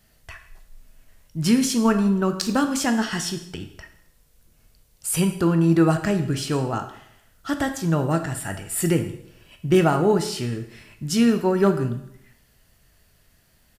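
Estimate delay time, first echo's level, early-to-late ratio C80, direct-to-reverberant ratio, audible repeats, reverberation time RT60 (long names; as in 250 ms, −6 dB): 163 ms, −23.5 dB, 12.5 dB, 6.5 dB, 1, 0.75 s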